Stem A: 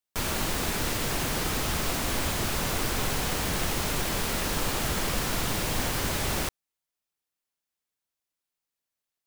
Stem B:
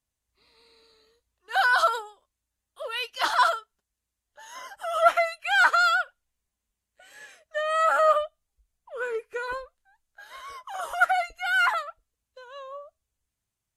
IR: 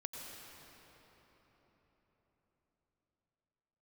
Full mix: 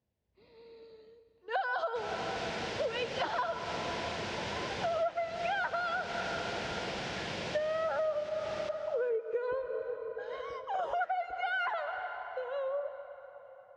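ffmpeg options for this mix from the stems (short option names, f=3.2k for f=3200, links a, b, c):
-filter_complex "[0:a]adelay=1800,volume=-7dB,asplit=2[a][b];[b]volume=-3.5dB[c];[1:a]tiltshelf=f=760:g=10,volume=2dB,asplit=2[d][e];[e]volume=-5dB[f];[2:a]atrim=start_sample=2205[g];[f][g]afir=irnorm=-1:irlink=0[h];[c]aecho=0:1:401|802|1203|1604:1|0.22|0.0484|0.0106[i];[a][d][h][i]amix=inputs=4:normalize=0,highpass=130,equalizer=f=140:t=q:w=4:g=-4,equalizer=f=270:t=q:w=4:g=-8,equalizer=f=500:t=q:w=4:g=3,equalizer=f=1.2k:t=q:w=4:g=-9,equalizer=f=4.2k:t=q:w=4:g=-3,lowpass=f=5k:w=0.5412,lowpass=f=5k:w=1.3066,acompressor=threshold=-30dB:ratio=10"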